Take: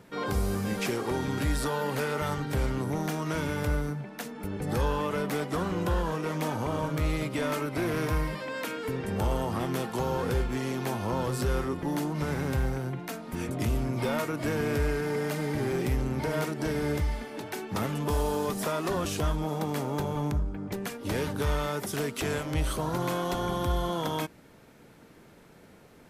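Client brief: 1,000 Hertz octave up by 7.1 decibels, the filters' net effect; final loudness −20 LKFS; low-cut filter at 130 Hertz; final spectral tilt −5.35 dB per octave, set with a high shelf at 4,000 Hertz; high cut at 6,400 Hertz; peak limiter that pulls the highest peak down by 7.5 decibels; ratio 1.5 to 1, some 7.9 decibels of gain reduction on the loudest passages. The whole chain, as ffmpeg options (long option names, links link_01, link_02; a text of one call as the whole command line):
ffmpeg -i in.wav -af "highpass=130,lowpass=6400,equalizer=frequency=1000:width_type=o:gain=9,highshelf=frequency=4000:gain=-7.5,acompressor=threshold=-45dB:ratio=1.5,volume=18dB,alimiter=limit=-10.5dB:level=0:latency=1" out.wav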